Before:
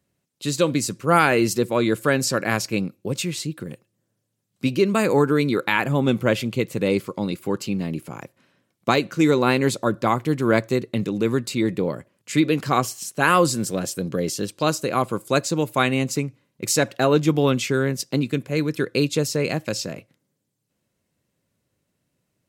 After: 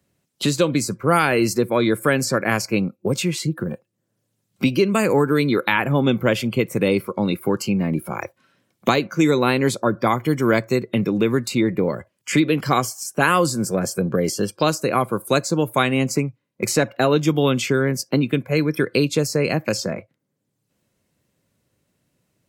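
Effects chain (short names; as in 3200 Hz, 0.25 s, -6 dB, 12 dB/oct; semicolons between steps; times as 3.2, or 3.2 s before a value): spectral noise reduction 18 dB; three-band squash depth 70%; gain +1.5 dB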